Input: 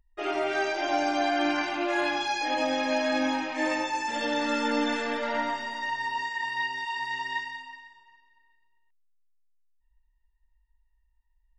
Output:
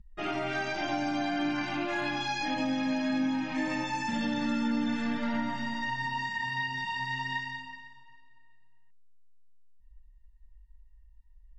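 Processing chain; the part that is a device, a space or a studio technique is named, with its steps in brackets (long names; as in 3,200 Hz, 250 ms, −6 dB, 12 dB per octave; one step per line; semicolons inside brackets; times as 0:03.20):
jukebox (low-pass filter 7,300 Hz 12 dB per octave; low shelf with overshoot 280 Hz +13.5 dB, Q 3; downward compressor 3 to 1, threshold −29 dBFS, peak gain reduction 9.5 dB)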